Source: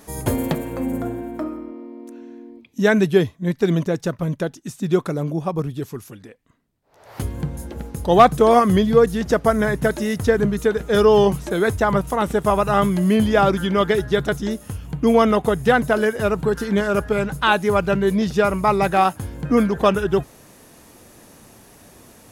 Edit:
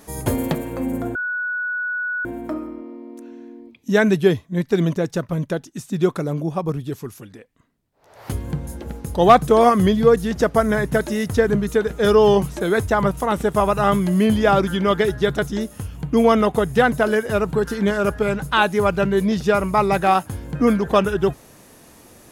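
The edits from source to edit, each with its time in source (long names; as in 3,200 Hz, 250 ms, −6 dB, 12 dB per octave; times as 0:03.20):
0:01.15: insert tone 1,470 Hz −21.5 dBFS 1.10 s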